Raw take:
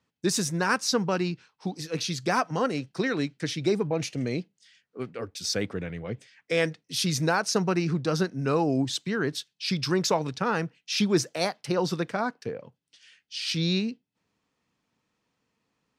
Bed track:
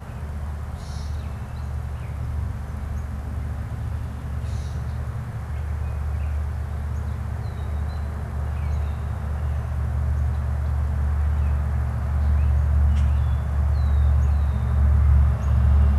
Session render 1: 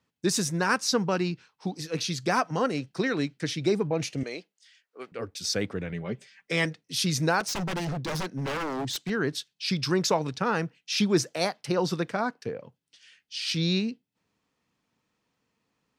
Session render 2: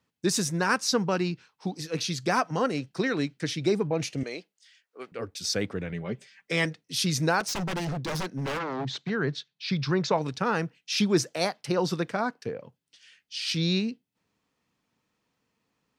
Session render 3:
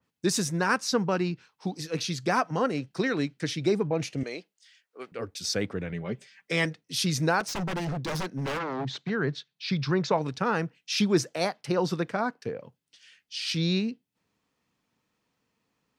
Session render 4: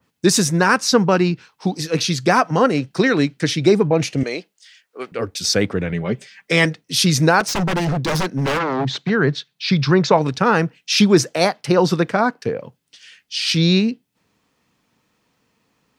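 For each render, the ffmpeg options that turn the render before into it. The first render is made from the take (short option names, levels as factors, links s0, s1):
-filter_complex "[0:a]asettb=1/sr,asplit=3[s0][s1][s2];[s0]atrim=end=4.234[s3];[s1]atrim=start=4.23:end=5.12,asetpts=PTS-STARTPTS,afade=t=in:d=0.004:c=qsin,afade=t=out:st=0.886:d=0.004:c=qsin,highpass=530[s4];[s2]atrim=start=5.116[s5];[s3][s4]acrossfade=d=0.004:c1=hsin:c2=qsin[s6];[s6][s5]acrossfade=d=0.004:c1=qsin:c2=hsin,asettb=1/sr,asplit=3[s7][s8][s9];[s7]atrim=end=5.924[s10];[s8]atrim=start=5.92:end=6.65,asetpts=PTS-STARTPTS,afade=t=in:d=0.004:c=qsin,afade=t=out:st=0.726:d=0.004:c=qsin,aecho=1:1:5.1:0.65,atrim=end_sample=32193[s11];[s9]atrim=start=6.646[s12];[s10][s11]acrossfade=d=0.004:c1=hsin:c2=qsin[s13];[s13][s12]acrossfade=d=0.004:c1=qsin:c2=hsin,asettb=1/sr,asplit=3[s14][s15][s16];[s14]atrim=end=7.404[s17];[s15]atrim=start=7.4:end=9.1,asetpts=PTS-STARTPTS,afade=t=in:d=0.004:c=qsin,afade=t=out:st=1.696:d=0.004:c=qsin,aeval=exprs='0.0531*(abs(mod(val(0)/0.0531+3,4)-2)-1)':c=same[s18];[s16]atrim=start=9.096[s19];[s17][s18]acrossfade=d=0.004:c1=hsin:c2=qsin[s20];[s20][s19]acrossfade=d=0.004:c1=qsin:c2=hsin"
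-filter_complex "[0:a]asplit=3[s0][s1][s2];[s0]afade=t=out:st=8.58:d=0.02[s3];[s1]highpass=130,equalizer=f=140:t=q:w=4:g=8,equalizer=f=310:t=q:w=4:g=-4,equalizer=f=2900:t=q:w=4:g=-4,equalizer=f=5100:t=q:w=4:g=-5,lowpass=f=5200:w=0.5412,lowpass=f=5200:w=1.3066,afade=t=in:st=8.58:d=0.02,afade=t=out:st=10.16:d=0.02[s4];[s2]afade=t=in:st=10.16:d=0.02[s5];[s3][s4][s5]amix=inputs=3:normalize=0"
-af "adynamicequalizer=threshold=0.00708:dfrequency=2800:dqfactor=0.7:tfrequency=2800:tqfactor=0.7:attack=5:release=100:ratio=0.375:range=2.5:mode=cutabove:tftype=highshelf"
-af "volume=3.55,alimiter=limit=0.794:level=0:latency=1"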